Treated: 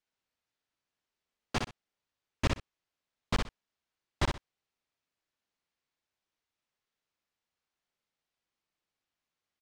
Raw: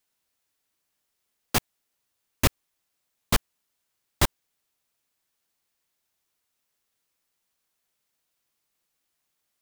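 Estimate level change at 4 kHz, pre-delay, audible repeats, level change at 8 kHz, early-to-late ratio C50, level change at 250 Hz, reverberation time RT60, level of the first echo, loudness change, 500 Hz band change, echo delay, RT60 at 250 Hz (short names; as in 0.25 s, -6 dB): -8.0 dB, none, 2, -15.0 dB, none, -5.5 dB, none, -4.5 dB, -8.5 dB, -5.5 dB, 61 ms, none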